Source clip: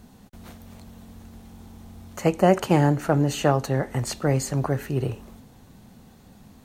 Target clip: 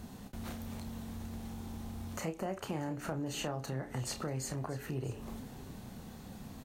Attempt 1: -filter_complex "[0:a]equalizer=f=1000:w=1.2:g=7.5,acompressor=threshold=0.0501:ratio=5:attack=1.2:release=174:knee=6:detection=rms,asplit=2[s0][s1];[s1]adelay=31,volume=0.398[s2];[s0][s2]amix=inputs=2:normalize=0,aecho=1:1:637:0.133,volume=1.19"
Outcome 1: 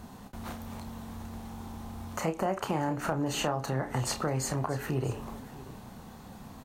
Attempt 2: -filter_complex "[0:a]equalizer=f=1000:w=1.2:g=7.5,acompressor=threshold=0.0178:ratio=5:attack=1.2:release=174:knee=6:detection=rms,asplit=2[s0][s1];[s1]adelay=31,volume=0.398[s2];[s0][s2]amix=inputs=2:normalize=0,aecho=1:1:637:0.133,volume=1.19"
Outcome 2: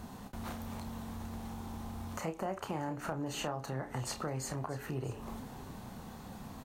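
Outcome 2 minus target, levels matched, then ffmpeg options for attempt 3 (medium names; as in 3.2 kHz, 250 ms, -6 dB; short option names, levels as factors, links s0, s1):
1 kHz band +4.0 dB
-filter_complex "[0:a]acompressor=threshold=0.0178:ratio=5:attack=1.2:release=174:knee=6:detection=rms,asplit=2[s0][s1];[s1]adelay=31,volume=0.398[s2];[s0][s2]amix=inputs=2:normalize=0,aecho=1:1:637:0.133,volume=1.19"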